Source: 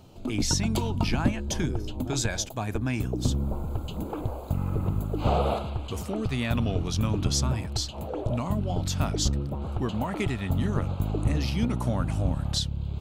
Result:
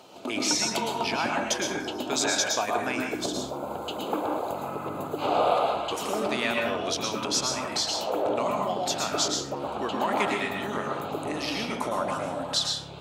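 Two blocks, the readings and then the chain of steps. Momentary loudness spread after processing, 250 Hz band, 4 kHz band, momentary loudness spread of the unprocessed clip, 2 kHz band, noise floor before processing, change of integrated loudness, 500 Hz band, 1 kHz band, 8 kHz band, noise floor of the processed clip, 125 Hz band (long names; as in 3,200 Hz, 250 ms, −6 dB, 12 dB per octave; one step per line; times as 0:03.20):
8 LU, −3.5 dB, +5.5 dB, 7 LU, +7.0 dB, −37 dBFS, +1.0 dB, +5.0 dB, +7.5 dB, +4.0 dB, −36 dBFS, −16.5 dB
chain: downward compressor 3 to 1, threshold −28 dBFS, peak gain reduction 8 dB
high-pass filter 490 Hz 12 dB per octave
high-shelf EQ 9,900 Hz −8.5 dB
dense smooth reverb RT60 0.71 s, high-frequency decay 0.5×, pre-delay 100 ms, DRR 0 dB
level +8.5 dB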